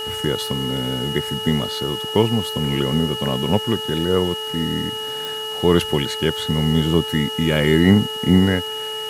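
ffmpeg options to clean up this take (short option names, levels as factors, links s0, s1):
-af "adeclick=t=4,bandreject=f=435.5:t=h:w=4,bandreject=f=871:t=h:w=4,bandreject=f=1306.5:t=h:w=4,bandreject=f=1742:t=h:w=4,bandreject=f=2900:w=30,afwtdn=0.01"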